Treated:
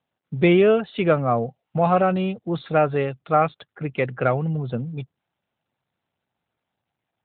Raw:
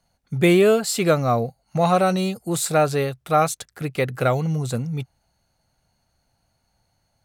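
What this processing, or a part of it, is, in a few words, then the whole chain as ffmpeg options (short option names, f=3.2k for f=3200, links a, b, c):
mobile call with aggressive noise cancelling: -af "highpass=110,afftdn=nr=17:nf=-44" -ar 8000 -c:a libopencore_amrnb -b:a 12200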